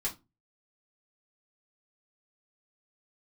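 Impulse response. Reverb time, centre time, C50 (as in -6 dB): not exponential, 14 ms, 14.5 dB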